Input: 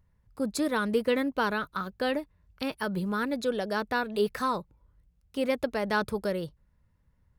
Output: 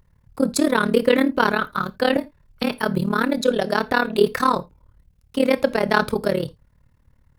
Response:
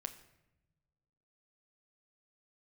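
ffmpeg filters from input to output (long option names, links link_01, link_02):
-filter_complex "[0:a]tremolo=f=37:d=0.919,asettb=1/sr,asplit=3[link_01][link_02][link_03];[link_01]atrim=end=2.164[link_04];[link_02]atrim=start=2.16:end=2.76,asetpts=PTS-STARTPTS,afade=type=in:duration=0.004:curve=qsin,afade=type=out:start_time=0.596:duration=0.004:curve=qsin,afreqshift=-25[link_05];[link_03]atrim=start=2.756[link_06];[link_04][link_05]acrossfade=duration=0.004:curve1=hsin:curve2=qsin[link_07];[link_07][link_06]acrossfade=duration=0.004:curve1=qsin:curve2=hsin,asplit=2[link_08][link_09];[1:a]atrim=start_sample=2205,atrim=end_sample=3969[link_10];[link_09][link_10]afir=irnorm=-1:irlink=0,volume=2.5dB[link_11];[link_08][link_11]amix=inputs=2:normalize=0,volume=7dB"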